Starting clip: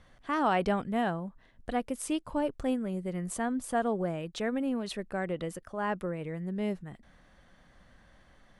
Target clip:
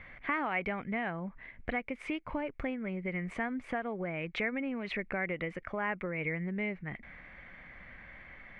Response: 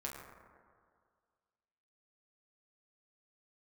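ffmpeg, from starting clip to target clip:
-af "acompressor=threshold=-37dB:ratio=10,lowpass=frequency=2200:width_type=q:width=10,volume=4dB"

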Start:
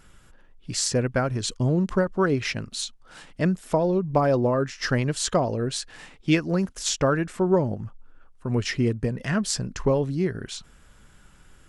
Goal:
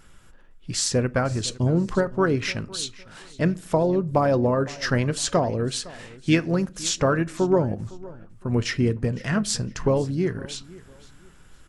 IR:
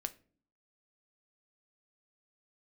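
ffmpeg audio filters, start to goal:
-filter_complex "[0:a]asplit=2[link_01][link_02];[link_02]asetrate=33038,aresample=44100,atempo=1.33484,volume=-15dB[link_03];[link_01][link_03]amix=inputs=2:normalize=0,aecho=1:1:509|1018:0.0944|0.0264,asplit=2[link_04][link_05];[1:a]atrim=start_sample=2205[link_06];[link_05][link_06]afir=irnorm=-1:irlink=0,volume=1dB[link_07];[link_04][link_07]amix=inputs=2:normalize=0,volume=-5dB"

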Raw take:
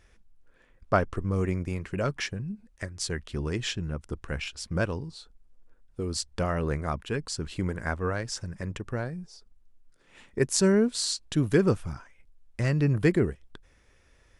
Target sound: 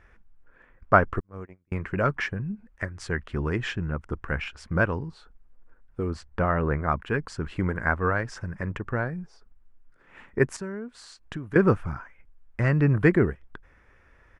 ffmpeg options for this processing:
ffmpeg -i in.wav -filter_complex "[0:a]asettb=1/sr,asplit=3[link_01][link_02][link_03];[link_01]atrim=end=1.204[link_04];[link_02]atrim=start=1.2:end=1.72,asetpts=PTS-STARTPTS,afade=type=in:duration=0.004:curve=qsin,afade=type=out:start_time=0.516:duration=0.004:curve=qsin,agate=range=-43dB:threshold=-22dB:ratio=16:detection=peak[link_05];[link_03]atrim=start=1.716[link_06];[link_04][link_05]acrossfade=duration=0.004:curve1=hsin:curve2=qsin[link_07];[link_07][link_06]acrossfade=duration=0.004:curve1=qsin:curve2=hsin,asettb=1/sr,asplit=3[link_08][link_09][link_10];[link_08]atrim=end=6.104[link_11];[link_09]atrim=start=6.1:end=6.89,asetpts=PTS-STARTPTS,afade=type=in:duration=0.004:curve=qsin,afade=type=out:start_time=0.786:duration=0.004:curve=qsin,highshelf=frequency=4000:gain=-11[link_12];[link_10]atrim=start=6.886[link_13];[link_11][link_12]acrossfade=duration=0.004:curve1=hsin:curve2=qsin[link_14];[link_14][link_13]acrossfade=duration=0.004:curve1=qsin:curve2=hsin,asettb=1/sr,asplit=3[link_15][link_16][link_17];[link_15]atrim=end=10.564[link_18];[link_16]atrim=start=10.56:end=11.56,asetpts=PTS-STARTPTS,afade=type=in:duration=0.004:curve=qsin,afade=type=out:start_time=0.996:duration=0.004:curve=qsin,acompressor=threshold=-35dB:ratio=10[link_19];[link_17]atrim=start=11.556[link_20];[link_18][link_19]acrossfade=duration=0.004:curve1=hsin:curve2=qsin[link_21];[link_21][link_20]acrossfade=duration=0.004:curve1=qsin:curve2=hsin,firequalizer=gain_entry='entry(560,0);entry(930,4);entry(1500,6);entry(3800,-12);entry(10000,-16)':delay=0.05:min_phase=1,volume=3dB" out.wav

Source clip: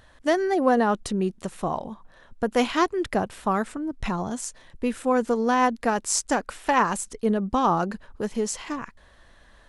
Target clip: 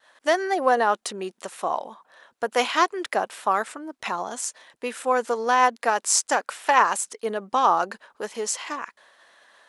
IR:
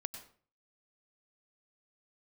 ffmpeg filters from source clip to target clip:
-af "agate=range=-33dB:threshold=-51dB:ratio=3:detection=peak,highpass=580,volume=4dB"

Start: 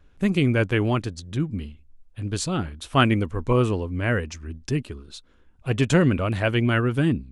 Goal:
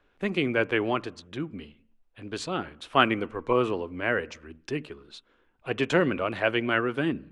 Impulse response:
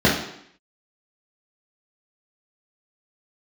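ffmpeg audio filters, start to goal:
-filter_complex "[0:a]acrossover=split=310 4200:gain=0.158 1 0.2[link_01][link_02][link_03];[link_01][link_02][link_03]amix=inputs=3:normalize=0,asplit=2[link_04][link_05];[link_05]asuperstop=centerf=4400:order=4:qfactor=1.3[link_06];[1:a]atrim=start_sample=2205,afade=type=out:start_time=0.28:duration=0.01,atrim=end_sample=12789,asetrate=33075,aresample=44100[link_07];[link_06][link_07]afir=irnorm=-1:irlink=0,volume=-43.5dB[link_08];[link_04][link_08]amix=inputs=2:normalize=0"

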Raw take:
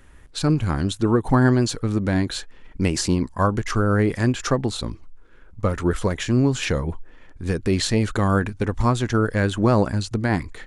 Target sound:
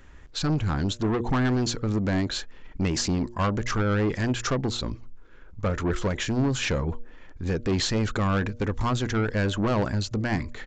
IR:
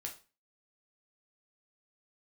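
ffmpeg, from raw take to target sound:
-af "aresample=16000,asoftclip=type=tanh:threshold=-19.5dB,aresample=44100,bandreject=frequency=119:width_type=h:width=4,bandreject=frequency=238:width_type=h:width=4,bandreject=frequency=357:width_type=h:width=4,bandreject=frequency=476:width_type=h:width=4,bandreject=frequency=595:width_type=h:width=4"

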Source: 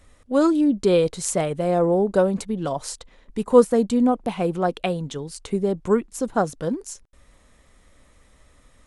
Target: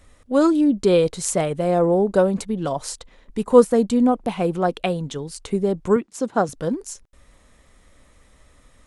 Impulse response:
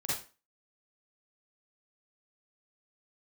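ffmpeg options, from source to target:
-filter_complex "[0:a]asettb=1/sr,asplit=3[link_01][link_02][link_03];[link_01]atrim=end=5.964[link_04];[link_02]atrim=start=5.96:end=6.49,asetpts=PTS-STARTPTS,afade=type=in:duration=0.004:curve=qsin,afade=type=out:start_time=0.526:duration=0.004:curve=qsin,highpass=150,lowpass=7700[link_05];[link_03]atrim=start=6.486[link_06];[link_04][link_05]acrossfade=duration=0.004:curve1=hsin:curve2=qsin[link_07];[link_07][link_06]acrossfade=duration=0.004:curve1=qsin:curve2=hsin,volume=1.5dB"

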